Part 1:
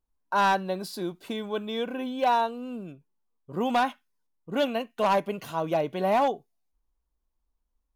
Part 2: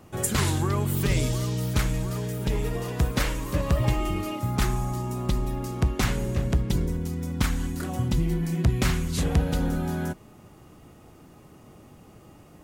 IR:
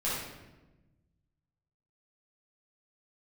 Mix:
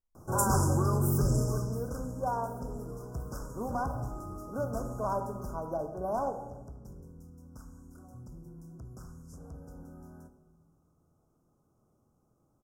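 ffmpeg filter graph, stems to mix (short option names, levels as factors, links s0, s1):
-filter_complex "[0:a]volume=0.299,asplit=2[s0][s1];[s1]volume=0.237[s2];[1:a]asoftclip=type=tanh:threshold=0.133,adelay=150,volume=0.75,afade=t=out:st=1.17:d=0.72:silence=0.266073,afade=t=out:st=5.46:d=0.25:silence=0.334965,asplit=2[s3][s4];[s4]volume=0.188[s5];[2:a]atrim=start_sample=2205[s6];[s2][s5]amix=inputs=2:normalize=0[s7];[s7][s6]afir=irnorm=-1:irlink=0[s8];[s0][s3][s8]amix=inputs=3:normalize=0,asuperstop=centerf=2800:order=20:qfactor=0.78"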